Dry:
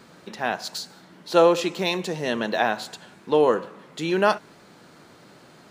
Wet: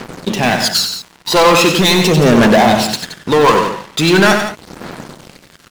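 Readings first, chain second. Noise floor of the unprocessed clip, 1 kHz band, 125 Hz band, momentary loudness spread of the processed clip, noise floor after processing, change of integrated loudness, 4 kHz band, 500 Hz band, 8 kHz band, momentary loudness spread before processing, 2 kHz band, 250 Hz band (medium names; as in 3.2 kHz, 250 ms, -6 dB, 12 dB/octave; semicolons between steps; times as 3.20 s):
-51 dBFS, +12.0 dB, +19.5 dB, 14 LU, -45 dBFS, +12.0 dB, +17.0 dB, +9.0 dB, +19.0 dB, 18 LU, +14.0 dB, +15.0 dB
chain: phaser 0.41 Hz, delay 1.1 ms, feedback 64%; waveshaping leveller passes 5; loudspeakers at several distances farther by 32 m -7 dB, 59 m -11 dB; trim -1 dB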